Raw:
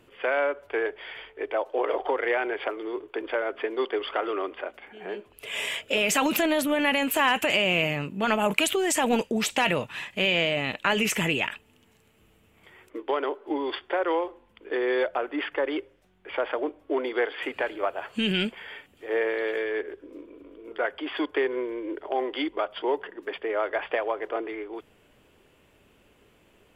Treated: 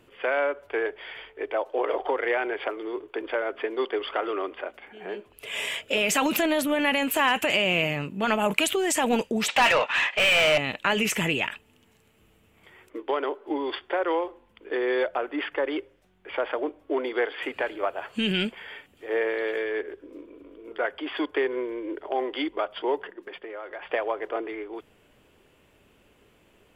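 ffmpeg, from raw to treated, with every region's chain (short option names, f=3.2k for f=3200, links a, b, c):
-filter_complex "[0:a]asettb=1/sr,asplit=3[a][b][c];[a]atrim=end=9.484[d];[b]atrim=start=9.48:end=10.58,asetpts=PTS-STARTPTS,afade=t=in:d=0.004:c=qsin,afade=t=out:st=1.096:d=0.004:c=qsin,highpass=590,lowpass=3.9k,asplit=2[e][f];[f]highpass=f=720:p=1,volume=24dB,asoftclip=type=tanh:threshold=-11dB[g];[e][g]amix=inputs=2:normalize=0,lowpass=f=2.7k:p=1,volume=-6dB[h];[c]atrim=start=10.576[i];[d][h]acrossfade=d=0.004:c1=hsin:c2=qsin[j];[j][i]acrossfade=d=0.004:c1=qsin:c2=hsin,asettb=1/sr,asplit=3[k][l][m];[k]atrim=end=23.124[n];[l]atrim=start=23.12:end=23.89,asetpts=PTS-STARTPTS,afade=t=in:d=0.004:c=qsin,afade=t=out:st=0.766:d=0.004:c=qsin,agate=range=-6dB:threshold=-43dB:ratio=16:release=100:detection=peak,acompressor=threshold=-37dB:ratio=3:attack=3.2:release=140:knee=1:detection=peak,aecho=1:1:5.6:0.32,atrim=end_sample=33957[o];[m]atrim=start=23.886[p];[n][o]acrossfade=d=0.004:c1=hsin:c2=qsin[q];[q][p]acrossfade=d=0.004:c1=qsin:c2=hsin"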